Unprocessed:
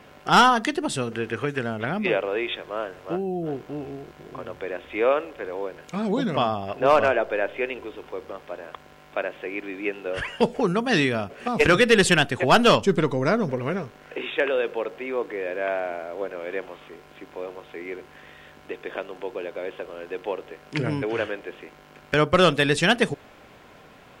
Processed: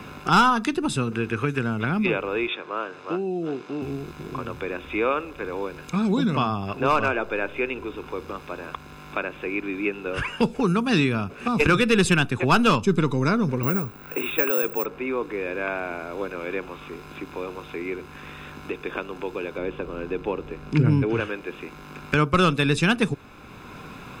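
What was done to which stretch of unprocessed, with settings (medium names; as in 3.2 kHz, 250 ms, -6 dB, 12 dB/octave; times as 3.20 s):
2.47–3.82 s: band-pass 300–6300 Hz
13.63–14.86 s: careless resampling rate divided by 2×, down filtered, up zero stuff
19.58–21.20 s: tilt EQ -2.5 dB/octave
whole clip: bass shelf 400 Hz +3.5 dB; comb 0.8 ms, depth 58%; three bands compressed up and down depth 40%; trim -1.5 dB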